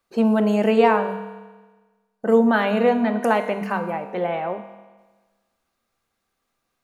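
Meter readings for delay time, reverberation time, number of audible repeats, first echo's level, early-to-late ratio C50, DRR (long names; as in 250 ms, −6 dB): no echo audible, 1.3 s, no echo audible, no echo audible, 9.5 dB, 7.0 dB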